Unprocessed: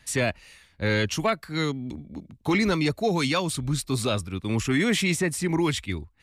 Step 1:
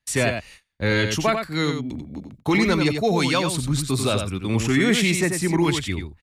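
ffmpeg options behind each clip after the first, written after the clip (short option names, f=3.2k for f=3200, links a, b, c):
-af "aecho=1:1:91:0.473,agate=range=-26dB:threshold=-47dB:ratio=16:detection=peak,volume=3dB"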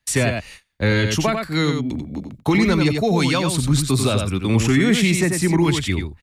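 -filter_complex "[0:a]acrossover=split=240[a][b];[b]acompressor=threshold=-26dB:ratio=2.5[c];[a][c]amix=inputs=2:normalize=0,volume=5.5dB"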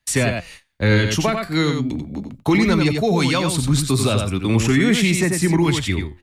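-af "flanger=delay=2.8:depth=8.9:regen=83:speed=0.4:shape=triangular,volume=5dB"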